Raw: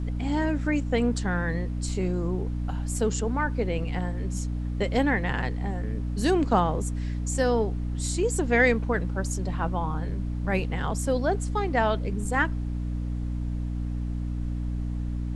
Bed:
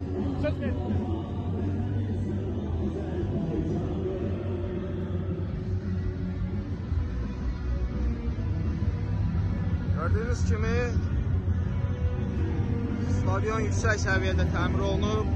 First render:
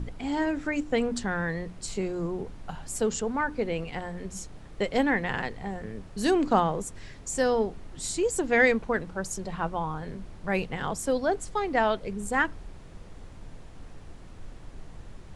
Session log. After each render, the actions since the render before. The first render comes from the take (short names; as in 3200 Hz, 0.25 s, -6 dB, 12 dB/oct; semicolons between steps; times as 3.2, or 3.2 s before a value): notches 60/120/180/240/300 Hz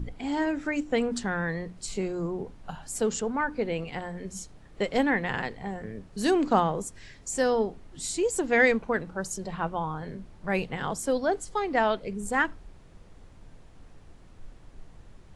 noise print and reduce 6 dB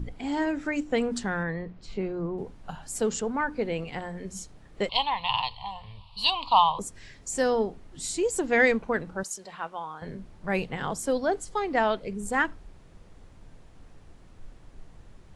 1.43–2.38 air absorption 240 m; 4.89–6.79 EQ curve 110 Hz 0 dB, 190 Hz -17 dB, 370 Hz -28 dB, 650 Hz -7 dB, 1000 Hz +14 dB, 1600 Hz -25 dB, 2800 Hz +15 dB, 4400 Hz +13 dB, 6300 Hz -18 dB, 9300 Hz -9 dB; 9.23–10.02 HPF 1100 Hz 6 dB/oct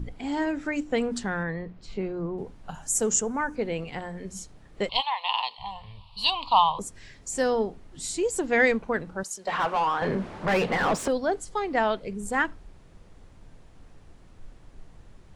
2.74–3.56 resonant high shelf 5300 Hz +6.5 dB, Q 3; 5–5.58 HPF 840 Hz -> 240 Hz 24 dB/oct; 9.47–11.08 overdrive pedal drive 30 dB, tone 1300 Hz, clips at -14 dBFS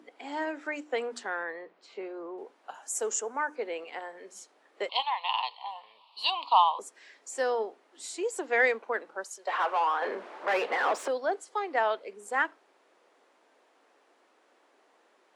Bessel high-pass 550 Hz, order 8; high shelf 3400 Hz -9 dB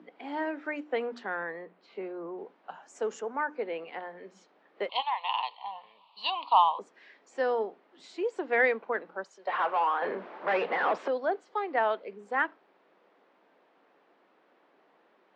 Bessel low-pass 3000 Hz, order 4; bell 170 Hz +14.5 dB 0.64 oct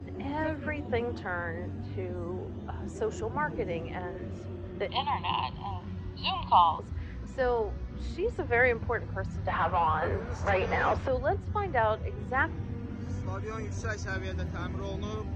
add bed -9 dB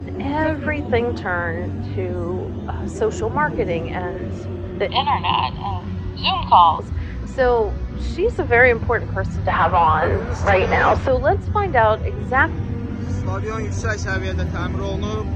gain +11.5 dB; limiter -1 dBFS, peak gain reduction 3 dB